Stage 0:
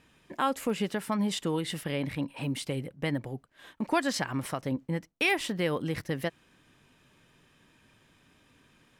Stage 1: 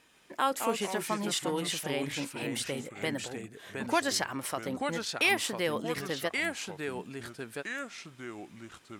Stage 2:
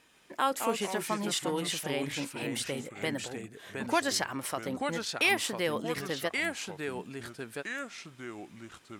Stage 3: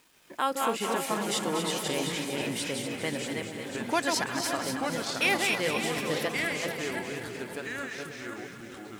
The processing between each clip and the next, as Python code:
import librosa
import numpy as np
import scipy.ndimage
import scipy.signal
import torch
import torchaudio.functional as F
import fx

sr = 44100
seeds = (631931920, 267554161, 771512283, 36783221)

y1 = fx.bass_treble(x, sr, bass_db=-12, treble_db=5)
y1 = fx.echo_pitch(y1, sr, ms=142, semitones=-3, count=2, db_per_echo=-6.0)
y2 = y1
y3 = fx.reverse_delay_fb(y2, sr, ms=269, feedback_pct=42, wet_db=-4)
y3 = fx.echo_split(y3, sr, split_hz=800.0, low_ms=433, high_ms=239, feedback_pct=52, wet_db=-8.0)
y3 = fx.quant_dither(y3, sr, seeds[0], bits=10, dither='none')